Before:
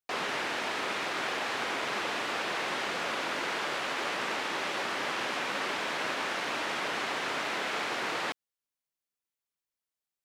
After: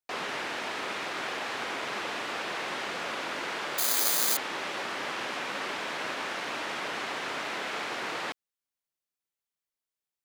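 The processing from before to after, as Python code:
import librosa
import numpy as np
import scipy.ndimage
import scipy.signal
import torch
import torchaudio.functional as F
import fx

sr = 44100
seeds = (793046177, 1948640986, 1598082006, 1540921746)

y = fx.resample_bad(x, sr, factor=8, down='filtered', up='zero_stuff', at=(3.78, 4.37))
y = y * 10.0 ** (-1.5 / 20.0)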